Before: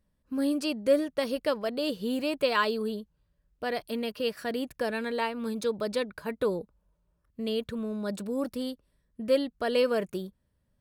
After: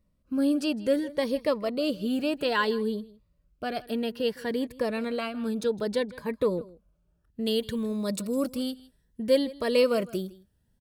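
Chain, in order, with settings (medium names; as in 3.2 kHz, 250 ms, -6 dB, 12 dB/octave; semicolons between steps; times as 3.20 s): treble shelf 3.5 kHz -5.5 dB, from 7.46 s +7 dB, from 8.51 s +2 dB; delay 159 ms -20.5 dB; Shepard-style phaser rising 0.61 Hz; trim +3.5 dB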